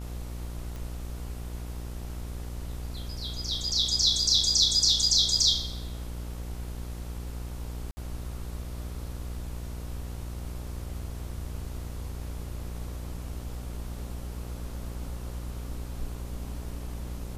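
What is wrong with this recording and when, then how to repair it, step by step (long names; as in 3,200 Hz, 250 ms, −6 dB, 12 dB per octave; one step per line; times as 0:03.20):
mains buzz 60 Hz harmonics 24 −37 dBFS
0:00.76: click
0:07.91–0:07.97: drop-out 60 ms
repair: click removal
hum removal 60 Hz, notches 24
repair the gap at 0:07.91, 60 ms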